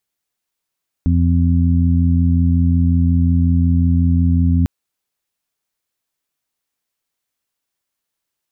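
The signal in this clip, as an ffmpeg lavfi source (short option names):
-f lavfi -i "aevalsrc='0.237*sin(2*PI*85.5*t)+0.126*sin(2*PI*171*t)+0.119*sin(2*PI*256.5*t)':d=3.6:s=44100"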